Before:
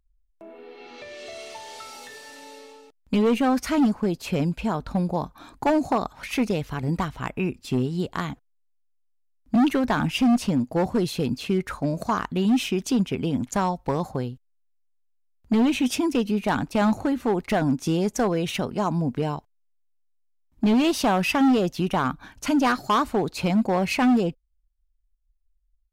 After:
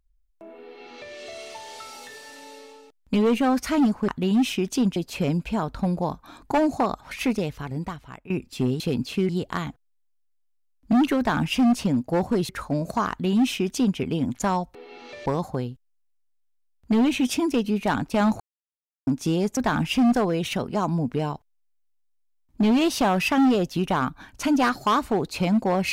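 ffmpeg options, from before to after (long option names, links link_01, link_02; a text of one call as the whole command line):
ffmpeg -i in.wav -filter_complex "[0:a]asplit=13[link_01][link_02][link_03][link_04][link_05][link_06][link_07][link_08][link_09][link_10][link_11][link_12][link_13];[link_01]atrim=end=4.082[link_14];[link_02]atrim=start=12.218:end=13.102[link_15];[link_03]atrim=start=4.078:end=7.42,asetpts=PTS-STARTPTS,afade=type=out:start_time=2.302:duration=1.04:silence=0.133352[link_16];[link_04]atrim=start=7.42:end=7.922,asetpts=PTS-STARTPTS,afade=type=in:duration=0.004:curve=hsin:silence=0.133352[link_17];[link_05]atrim=start=11.118:end=11.612[link_18];[link_06]atrim=start=7.918:end=11.122[link_19];[link_07]atrim=start=11.608:end=13.872[link_20];[link_08]atrim=start=0.638:end=1.152[link_21];[link_09]atrim=start=13.868:end=17.01,asetpts=PTS-STARTPTS,afade=type=out:start_time=3.138:duration=0.004:curve=hsin[link_22];[link_10]atrim=start=17.01:end=17.68,asetpts=PTS-STARTPTS,volume=0[link_23];[link_11]atrim=start=17.68:end=18.182,asetpts=PTS-STARTPTS,afade=type=in:duration=0.004:curve=hsin[link_24];[link_12]atrim=start=9.808:end=10.392[link_25];[link_13]atrim=start=18.178[link_26];[link_14][link_15]acrossfade=duration=0.004:curve1=hsin:curve2=hsin[link_27];[link_16][link_17]concat=n=2:v=0:a=1[link_28];[link_27][link_28]acrossfade=duration=0.004:curve1=hsin:curve2=hsin[link_29];[link_29][link_18]acrossfade=duration=0.004:curve1=hsin:curve2=hsin[link_30];[link_30][link_19]acrossfade=duration=0.004:curve1=hsin:curve2=hsin[link_31];[link_31][link_20]acrossfade=duration=0.004:curve1=hsin:curve2=hsin[link_32];[link_32][link_21]acrossfade=duration=0.004:curve1=hsin:curve2=hsin[link_33];[link_22][link_23][link_24]concat=n=3:v=0:a=1[link_34];[link_33][link_34]acrossfade=duration=0.004:curve1=hsin:curve2=hsin[link_35];[link_35][link_25]acrossfade=duration=0.004:curve1=hsin:curve2=hsin[link_36];[link_36][link_26]acrossfade=duration=0.004:curve1=hsin:curve2=hsin" out.wav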